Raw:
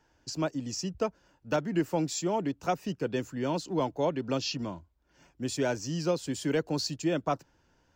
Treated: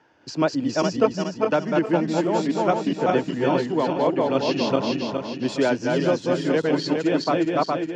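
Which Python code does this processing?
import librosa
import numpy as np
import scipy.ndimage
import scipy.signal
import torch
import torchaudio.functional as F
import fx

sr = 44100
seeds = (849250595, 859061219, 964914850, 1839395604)

y = fx.reverse_delay_fb(x, sr, ms=207, feedback_pct=65, wet_db=-1.0)
y = fx.bandpass_edges(y, sr, low_hz=180.0, high_hz=3400.0)
y = fx.rider(y, sr, range_db=3, speed_s=0.5)
y = y * librosa.db_to_amplitude(7.0)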